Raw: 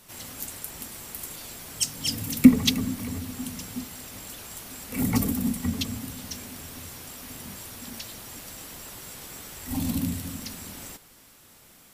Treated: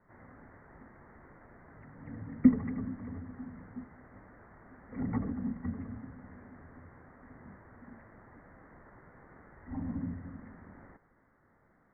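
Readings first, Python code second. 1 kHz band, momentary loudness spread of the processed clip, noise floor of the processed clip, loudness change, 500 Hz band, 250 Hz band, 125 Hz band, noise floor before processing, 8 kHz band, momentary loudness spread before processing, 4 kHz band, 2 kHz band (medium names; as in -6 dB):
-8.5 dB, 23 LU, -68 dBFS, -6.5 dB, -8.5 dB, -8.5 dB, -8.5 dB, -54 dBFS, under -40 dB, 14 LU, under -40 dB, -13.5 dB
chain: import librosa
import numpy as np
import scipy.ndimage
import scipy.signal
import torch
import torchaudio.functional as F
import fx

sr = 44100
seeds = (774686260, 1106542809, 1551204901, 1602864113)

y = scipy.signal.sosfilt(scipy.signal.butter(16, 2000.0, 'lowpass', fs=sr, output='sos'), x)
y = y * 10.0 ** (-8.5 / 20.0)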